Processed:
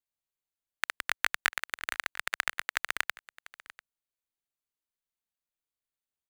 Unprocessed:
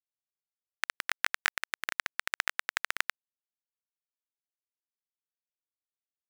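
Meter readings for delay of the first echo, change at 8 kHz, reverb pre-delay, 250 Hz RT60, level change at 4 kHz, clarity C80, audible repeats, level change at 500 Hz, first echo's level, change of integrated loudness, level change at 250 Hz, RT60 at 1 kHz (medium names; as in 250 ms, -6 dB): 694 ms, +0.5 dB, no reverb, no reverb, +0.5 dB, no reverb, 1, +1.0 dB, -19.5 dB, +1.0 dB, +2.0 dB, no reverb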